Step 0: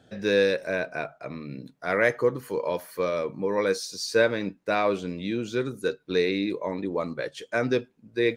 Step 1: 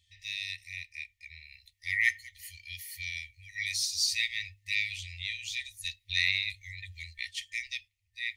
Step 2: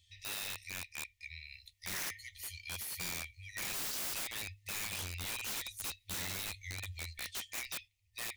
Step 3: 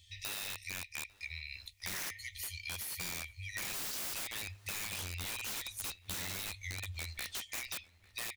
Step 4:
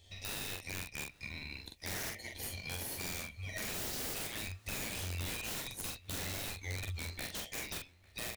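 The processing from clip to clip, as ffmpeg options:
-af "dynaudnorm=f=160:g=13:m=3.76,bandreject=f=50:t=h:w=6,bandreject=f=100:t=h:w=6,afftfilt=real='re*(1-between(b*sr/4096,100,1800))':imag='im*(1-between(b*sr/4096,100,1800))':win_size=4096:overlap=0.75,volume=0.668"
-filter_complex "[0:a]equalizer=f=1500:w=2.5:g=-11,acrossover=split=1200[s0][s1];[s1]alimiter=limit=0.0794:level=0:latency=1:release=238[s2];[s0][s2]amix=inputs=2:normalize=0,aeval=exprs='(mod(63.1*val(0)+1,2)-1)/63.1':c=same,volume=1.33"
-filter_complex "[0:a]acompressor=threshold=0.00501:ratio=4,asplit=2[s0][s1];[s1]adelay=849,lowpass=f=3500:p=1,volume=0.0794,asplit=2[s2][s3];[s3]adelay=849,lowpass=f=3500:p=1,volume=0.47,asplit=2[s4][s5];[s5]adelay=849,lowpass=f=3500:p=1,volume=0.47[s6];[s0][s2][s4][s6]amix=inputs=4:normalize=0,volume=2.24"
-filter_complex "[0:a]asplit=2[s0][s1];[s1]acrusher=samples=35:mix=1:aa=0.000001,volume=0.501[s2];[s0][s2]amix=inputs=2:normalize=0,asplit=2[s3][s4];[s4]adelay=44,volume=0.631[s5];[s3][s5]amix=inputs=2:normalize=0,volume=0.75"

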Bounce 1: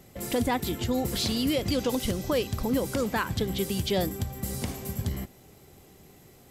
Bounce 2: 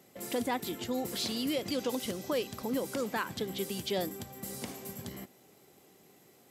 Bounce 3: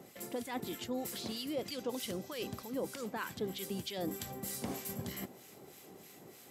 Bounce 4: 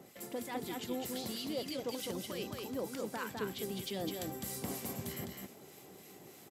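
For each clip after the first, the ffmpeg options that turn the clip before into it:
-af "highpass=210,volume=0.562"
-filter_complex "[0:a]areverse,acompressor=threshold=0.00708:ratio=6,areverse,acrossover=split=1300[s0][s1];[s0]aeval=exprs='val(0)*(1-0.7/2+0.7/2*cos(2*PI*3.2*n/s))':c=same[s2];[s1]aeval=exprs='val(0)*(1-0.7/2-0.7/2*cos(2*PI*3.2*n/s))':c=same[s3];[s2][s3]amix=inputs=2:normalize=0,volume=2.82"
-af "aecho=1:1:206:0.668,volume=0.841"

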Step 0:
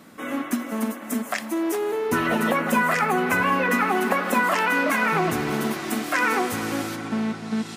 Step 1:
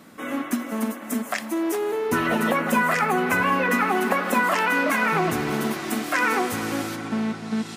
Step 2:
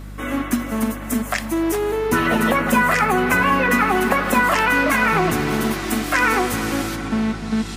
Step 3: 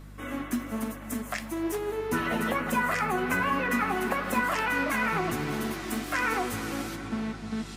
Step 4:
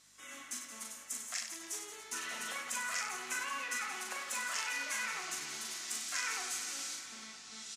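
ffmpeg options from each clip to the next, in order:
-af anull
-af "equalizer=f=620:t=o:w=1.6:g=-2,aeval=exprs='val(0)+0.0126*(sin(2*PI*50*n/s)+sin(2*PI*2*50*n/s)/2+sin(2*PI*3*50*n/s)/3+sin(2*PI*4*50*n/s)/4+sin(2*PI*5*50*n/s)/5)':c=same,volume=1.78"
-af "flanger=delay=6:depth=8.3:regen=66:speed=1.1:shape=triangular,volume=0.501"
-af "lowpass=f=6700:t=q:w=2,aderivative,aecho=1:1:40|96|174.4|284.2|437.8:0.631|0.398|0.251|0.158|0.1"

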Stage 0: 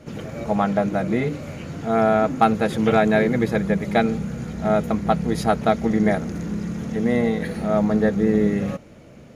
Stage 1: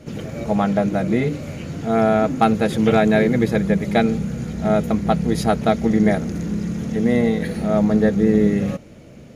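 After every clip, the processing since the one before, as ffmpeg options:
-af "equalizer=f=1100:t=o:w=1.7:g=-5,volume=1.5"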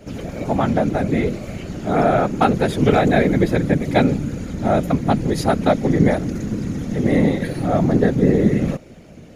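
-af "afftfilt=real='hypot(re,im)*cos(2*PI*random(0))':imag='hypot(re,im)*sin(2*PI*random(1))':win_size=512:overlap=0.75,volume=2.11"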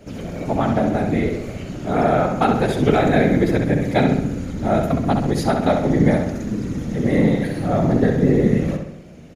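-filter_complex "[0:a]asplit=2[s0][s1];[s1]adelay=66,lowpass=f=4700:p=1,volume=0.562,asplit=2[s2][s3];[s3]adelay=66,lowpass=f=4700:p=1,volume=0.54,asplit=2[s4][s5];[s5]adelay=66,lowpass=f=4700:p=1,volume=0.54,asplit=2[s6][s7];[s7]adelay=66,lowpass=f=4700:p=1,volume=0.54,asplit=2[s8][s9];[s9]adelay=66,lowpass=f=4700:p=1,volume=0.54,asplit=2[s10][s11];[s11]adelay=66,lowpass=f=4700:p=1,volume=0.54,asplit=2[s12][s13];[s13]adelay=66,lowpass=f=4700:p=1,volume=0.54[s14];[s0][s2][s4][s6][s8][s10][s12][s14]amix=inputs=8:normalize=0,volume=0.794"

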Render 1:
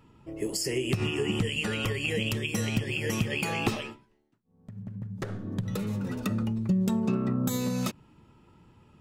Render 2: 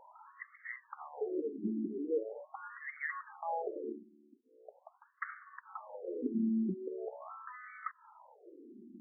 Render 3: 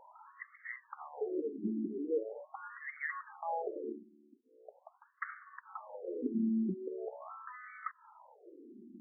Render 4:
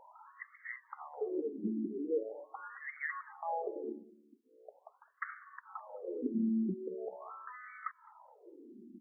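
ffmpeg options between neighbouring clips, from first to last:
-af "acompressor=threshold=0.0126:ratio=5,afftfilt=real='re*between(b*sr/1024,270*pow(1600/270,0.5+0.5*sin(2*PI*0.42*pts/sr))/1.41,270*pow(1600/270,0.5+0.5*sin(2*PI*0.42*pts/sr))*1.41)':imag='im*between(b*sr/1024,270*pow(1600/270,0.5+0.5*sin(2*PI*0.42*pts/sr))/1.41,270*pow(1600/270,0.5+0.5*sin(2*PI*0.42*pts/sr))*1.41)':win_size=1024:overlap=0.75,volume=3.55"
-af anull
-filter_complex "[0:a]asplit=2[s0][s1];[s1]adelay=209,lowpass=f=1000:p=1,volume=0.075,asplit=2[s2][s3];[s3]adelay=209,lowpass=f=1000:p=1,volume=0.18[s4];[s0][s2][s4]amix=inputs=3:normalize=0"

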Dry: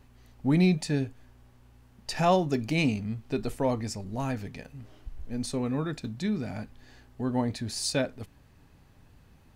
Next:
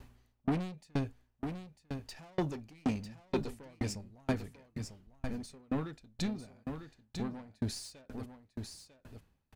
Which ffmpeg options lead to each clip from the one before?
-af "asoftclip=type=tanh:threshold=0.0335,aecho=1:1:948:0.447,aeval=exprs='val(0)*pow(10,-37*if(lt(mod(2.1*n/s,1),2*abs(2.1)/1000),1-mod(2.1*n/s,1)/(2*abs(2.1)/1000),(mod(2.1*n/s,1)-2*abs(2.1)/1000)/(1-2*abs(2.1)/1000))/20)':c=same,volume=1.78"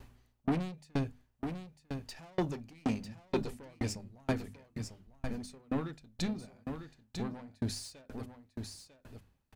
-af "bandreject=f=50:t=h:w=6,bandreject=f=100:t=h:w=6,bandreject=f=150:t=h:w=6,bandreject=f=200:t=h:w=6,bandreject=f=250:t=h:w=6,volume=1.12"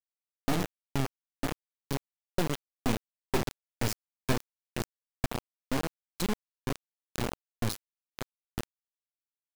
-af "bandreject=f=3200:w=11,bandreject=f=287.3:t=h:w=4,bandreject=f=574.6:t=h:w=4,bandreject=f=861.9:t=h:w=4,bandreject=f=1149.2:t=h:w=4,bandreject=f=1436.5:t=h:w=4,bandreject=f=1723.8:t=h:w=4,bandreject=f=2011.1:t=h:w=4,bandreject=f=2298.4:t=h:w=4,bandreject=f=2585.7:t=h:w=4,bandreject=f=2873:t=h:w=4,acrusher=bits=3:dc=4:mix=0:aa=0.000001,volume=2.24"

